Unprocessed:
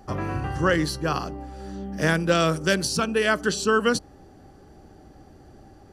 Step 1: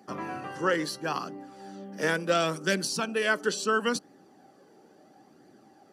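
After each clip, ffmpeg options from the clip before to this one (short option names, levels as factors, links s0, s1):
-af "highpass=f=190:w=0.5412,highpass=f=190:w=1.3066,flanger=delay=0.4:depth=1.9:regen=49:speed=0.73:shape=triangular"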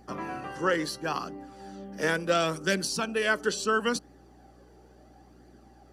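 -af "aeval=exprs='val(0)+0.00141*(sin(2*PI*60*n/s)+sin(2*PI*2*60*n/s)/2+sin(2*PI*3*60*n/s)/3+sin(2*PI*4*60*n/s)/4+sin(2*PI*5*60*n/s)/5)':c=same"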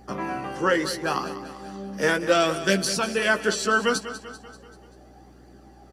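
-filter_complex "[0:a]asplit=2[s0][s1];[s1]adelay=15,volume=0.447[s2];[s0][s2]amix=inputs=2:normalize=0,aecho=1:1:194|388|582|776|970:0.224|0.119|0.0629|0.0333|0.0177,volume=1.58"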